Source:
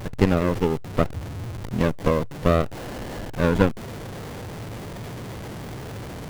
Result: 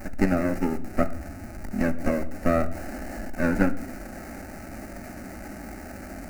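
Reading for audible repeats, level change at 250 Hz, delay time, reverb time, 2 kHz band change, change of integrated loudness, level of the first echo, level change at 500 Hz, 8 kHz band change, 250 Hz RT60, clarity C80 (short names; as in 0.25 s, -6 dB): none, -1.0 dB, none, 0.80 s, -0.5 dB, -2.0 dB, none, -4.5 dB, -2.0 dB, 1.2 s, 18.0 dB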